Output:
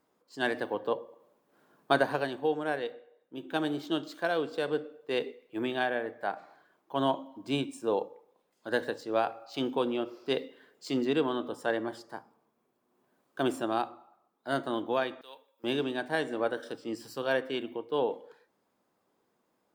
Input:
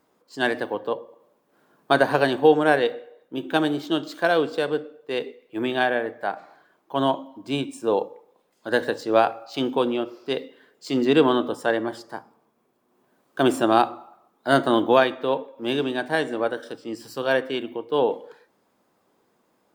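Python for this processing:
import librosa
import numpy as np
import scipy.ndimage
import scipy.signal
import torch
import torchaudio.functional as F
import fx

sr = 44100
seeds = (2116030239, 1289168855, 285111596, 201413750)

y = fx.rider(x, sr, range_db=5, speed_s=0.5)
y = fx.differentiator(y, sr, at=(15.21, 15.64))
y = y * 10.0 ** (-8.5 / 20.0)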